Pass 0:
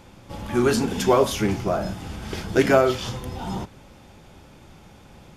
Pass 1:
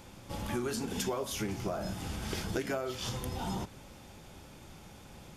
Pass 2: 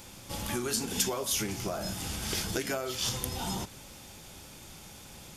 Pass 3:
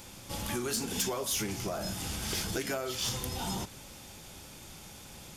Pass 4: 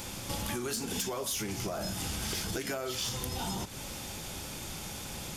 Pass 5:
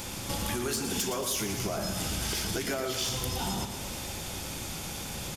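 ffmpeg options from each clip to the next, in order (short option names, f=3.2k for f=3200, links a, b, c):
-af "highshelf=f=5.2k:g=8,acompressor=threshold=-27dB:ratio=10,volume=-4dB"
-af "highshelf=f=2.9k:g=11.5"
-af "asoftclip=type=tanh:threshold=-24dB"
-af "acompressor=threshold=-41dB:ratio=5,volume=8dB"
-af "aecho=1:1:116|232|348|464|580|696|812:0.376|0.222|0.131|0.0772|0.0455|0.0269|0.0159,volume=2.5dB"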